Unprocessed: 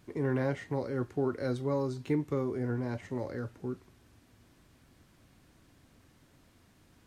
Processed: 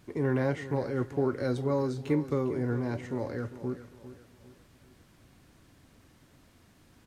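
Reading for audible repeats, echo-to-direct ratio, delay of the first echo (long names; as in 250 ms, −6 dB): 3, −13.0 dB, 401 ms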